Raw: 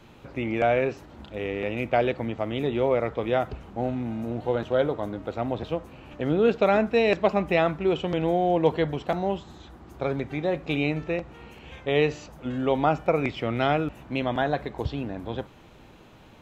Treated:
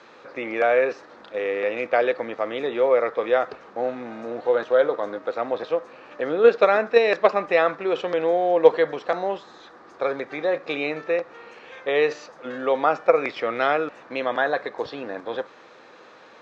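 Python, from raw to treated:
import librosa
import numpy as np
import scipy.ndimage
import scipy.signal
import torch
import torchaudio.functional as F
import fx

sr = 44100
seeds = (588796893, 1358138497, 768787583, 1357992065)

p1 = fx.high_shelf(x, sr, hz=3700.0, db=8.0)
p2 = fx.level_steps(p1, sr, step_db=18)
p3 = p1 + F.gain(torch.from_numpy(p2), -1.0).numpy()
p4 = fx.cabinet(p3, sr, low_hz=380.0, low_slope=12, high_hz=5600.0, hz=(500.0, 1200.0, 1700.0, 3000.0), db=(8, 7, 7, -7))
y = F.gain(torch.from_numpy(p4), -1.5).numpy()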